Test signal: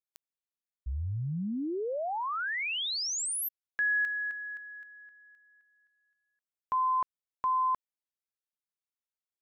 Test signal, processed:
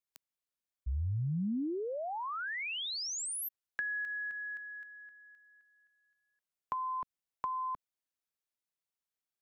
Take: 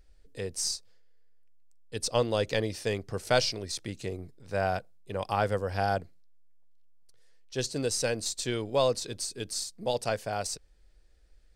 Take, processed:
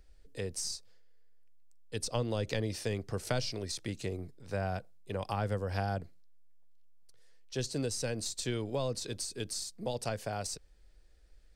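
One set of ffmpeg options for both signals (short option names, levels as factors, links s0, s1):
-filter_complex "[0:a]acrossover=split=260[s0][s1];[s1]acompressor=threshold=0.0112:ratio=3:attack=28:release=147:knee=2.83:detection=peak[s2];[s0][s2]amix=inputs=2:normalize=0"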